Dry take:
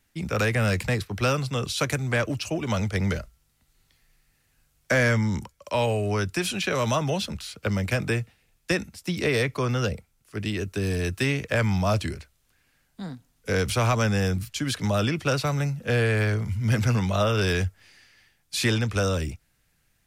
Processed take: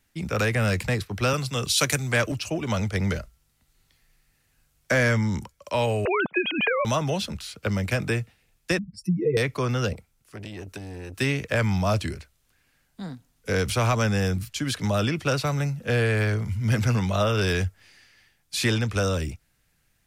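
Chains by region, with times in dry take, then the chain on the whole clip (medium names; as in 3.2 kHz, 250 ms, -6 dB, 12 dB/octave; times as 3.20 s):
1.33–2.32 s: treble shelf 2.7 kHz +9.5 dB + three bands expanded up and down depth 40%
6.05–6.85 s: formants replaced by sine waves + three bands compressed up and down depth 100%
8.78–9.37 s: spectral contrast enhancement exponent 3.2 + comb 6.1 ms, depth 89%
9.93–11.19 s: compression, threshold -31 dBFS + transformer saturation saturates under 500 Hz
whole clip: none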